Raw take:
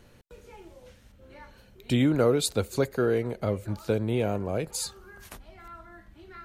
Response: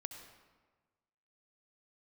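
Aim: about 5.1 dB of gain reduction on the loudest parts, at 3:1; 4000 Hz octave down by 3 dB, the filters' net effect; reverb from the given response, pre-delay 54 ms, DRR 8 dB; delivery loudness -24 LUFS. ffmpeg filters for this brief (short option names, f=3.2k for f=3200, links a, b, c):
-filter_complex "[0:a]equalizer=f=4k:t=o:g=-3.5,acompressor=threshold=-25dB:ratio=3,asplit=2[a][b];[1:a]atrim=start_sample=2205,adelay=54[c];[b][c]afir=irnorm=-1:irlink=0,volume=-5dB[d];[a][d]amix=inputs=2:normalize=0,volume=6.5dB"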